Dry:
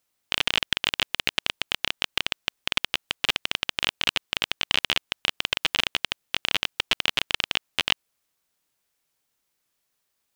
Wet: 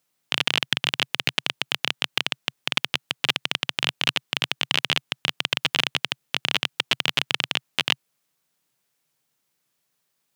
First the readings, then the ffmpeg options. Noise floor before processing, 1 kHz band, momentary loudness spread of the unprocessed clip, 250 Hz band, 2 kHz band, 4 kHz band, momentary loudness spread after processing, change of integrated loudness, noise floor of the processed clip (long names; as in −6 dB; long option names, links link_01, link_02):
−77 dBFS, +1.5 dB, 4 LU, +4.0 dB, +1.5 dB, +1.5 dB, 4 LU, +1.5 dB, −75 dBFS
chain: -af "lowshelf=frequency=100:width_type=q:width=3:gain=-10,volume=1.5dB"